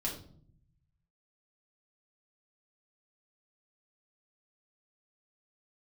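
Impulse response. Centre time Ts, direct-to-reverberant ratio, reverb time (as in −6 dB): 25 ms, −4.0 dB, 0.55 s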